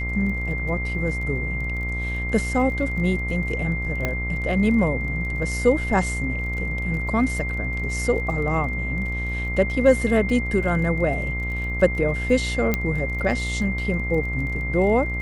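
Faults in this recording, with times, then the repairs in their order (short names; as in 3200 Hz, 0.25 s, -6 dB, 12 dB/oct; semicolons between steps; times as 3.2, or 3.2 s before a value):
buzz 60 Hz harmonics 23 -28 dBFS
crackle 29/s -33 dBFS
tone 2100 Hz -28 dBFS
4.05 pop -10 dBFS
12.74 pop -7 dBFS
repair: de-click; de-hum 60 Hz, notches 23; notch 2100 Hz, Q 30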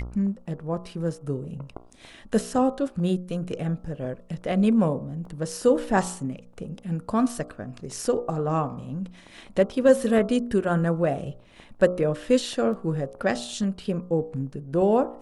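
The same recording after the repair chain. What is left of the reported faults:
12.74 pop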